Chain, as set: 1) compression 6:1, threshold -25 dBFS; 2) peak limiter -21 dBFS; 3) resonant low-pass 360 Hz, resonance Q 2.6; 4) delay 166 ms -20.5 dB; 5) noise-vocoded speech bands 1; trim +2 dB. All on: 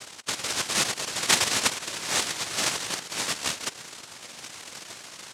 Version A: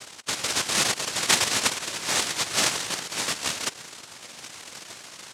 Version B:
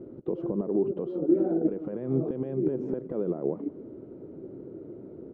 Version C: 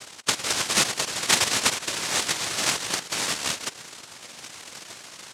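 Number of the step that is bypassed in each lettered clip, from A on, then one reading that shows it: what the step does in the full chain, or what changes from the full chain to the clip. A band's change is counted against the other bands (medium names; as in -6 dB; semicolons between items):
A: 1, mean gain reduction 4.0 dB; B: 5, 1 kHz band -25.0 dB; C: 2, crest factor change -2.0 dB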